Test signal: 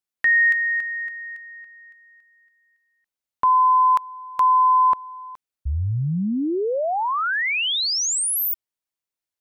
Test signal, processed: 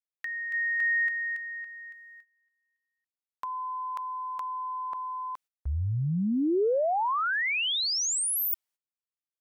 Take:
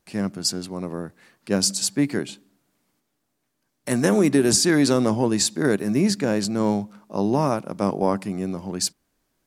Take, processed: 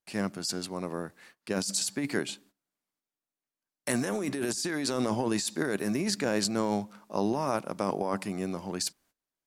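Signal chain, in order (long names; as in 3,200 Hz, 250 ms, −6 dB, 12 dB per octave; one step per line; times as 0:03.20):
noise gate −54 dBFS, range −18 dB
low-shelf EQ 410 Hz −9 dB
compressor whose output falls as the input rises −27 dBFS, ratio −1
level −2 dB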